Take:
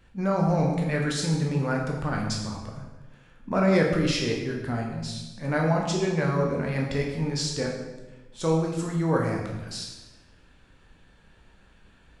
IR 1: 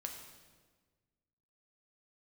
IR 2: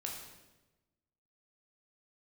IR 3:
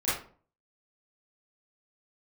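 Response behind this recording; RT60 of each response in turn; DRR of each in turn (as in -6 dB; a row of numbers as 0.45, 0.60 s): 2; 1.5, 1.1, 0.45 s; 2.0, -1.0, -12.5 dB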